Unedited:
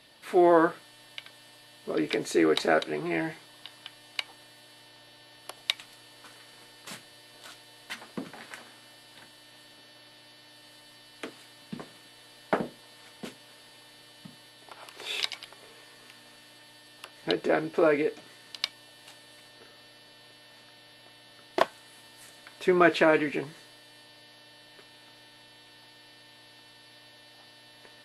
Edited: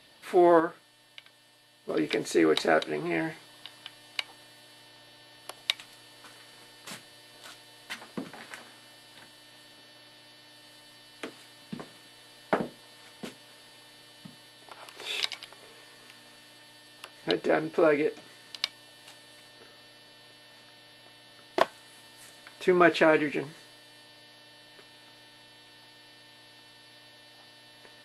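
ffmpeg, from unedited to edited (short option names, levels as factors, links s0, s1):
-filter_complex "[0:a]asplit=3[s0][s1][s2];[s0]atrim=end=0.602[s3];[s1]atrim=start=0.598:end=1.892,asetpts=PTS-STARTPTS,volume=0.473[s4];[s2]atrim=start=1.888[s5];[s3][s4]acrossfade=d=0.004:c1=hsin:c2=hsin[s6];[s6][s5]acrossfade=d=0.004:c1=hsin:c2=hsin"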